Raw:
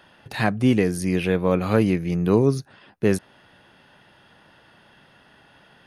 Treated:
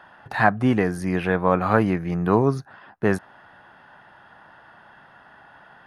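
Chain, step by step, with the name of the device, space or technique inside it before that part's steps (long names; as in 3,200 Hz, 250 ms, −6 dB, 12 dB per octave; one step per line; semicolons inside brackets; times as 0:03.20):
flat-topped bell 1,100 Hz +10 dB
behind a face mask (high-shelf EQ 3,400 Hz −8 dB)
level −1.5 dB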